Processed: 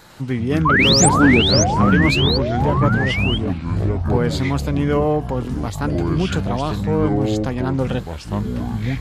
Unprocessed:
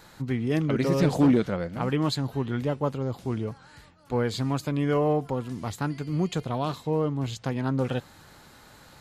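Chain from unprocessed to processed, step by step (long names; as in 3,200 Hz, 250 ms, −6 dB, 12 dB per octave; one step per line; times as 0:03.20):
sound drawn into the spectrogram rise, 0:00.65–0:01.09, 960–9,500 Hz −21 dBFS
delay with pitch and tempo change per echo 101 ms, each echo −6 semitones, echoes 3
level +5.5 dB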